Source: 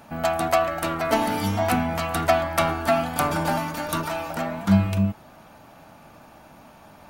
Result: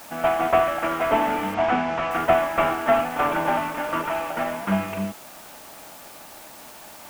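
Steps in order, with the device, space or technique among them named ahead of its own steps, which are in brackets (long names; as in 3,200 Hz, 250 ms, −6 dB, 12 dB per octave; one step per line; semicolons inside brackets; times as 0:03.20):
army field radio (band-pass filter 310–3,000 Hz; variable-slope delta modulation 16 kbit/s; white noise bed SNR 21 dB)
0:01.54–0:02.11: low-pass filter 6,200 Hz 24 dB per octave
level +3.5 dB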